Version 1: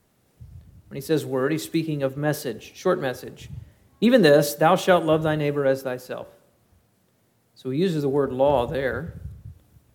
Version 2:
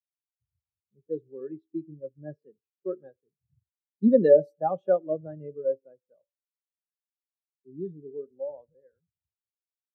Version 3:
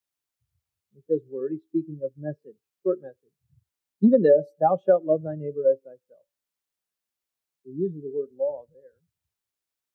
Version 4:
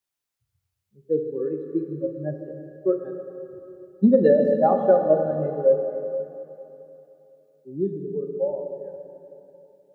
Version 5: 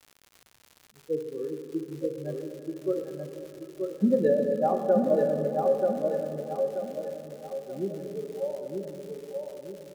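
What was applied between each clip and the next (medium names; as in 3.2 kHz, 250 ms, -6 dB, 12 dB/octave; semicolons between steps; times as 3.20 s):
fade out at the end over 2.39 s; level-controlled noise filter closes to 1.6 kHz, open at -15 dBFS; spectral contrast expander 2.5:1; trim -2.5 dB
compression 5:1, threshold -22 dBFS, peak gain reduction 10 dB; trim +8 dB
plate-style reverb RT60 3.1 s, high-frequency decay 0.95×, DRR 3.5 dB; trim +1 dB
crackle 160 per s -32 dBFS; vibrato 0.38 Hz 29 cents; on a send: feedback delay 932 ms, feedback 40%, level -4 dB; on the sum: trim -6.5 dB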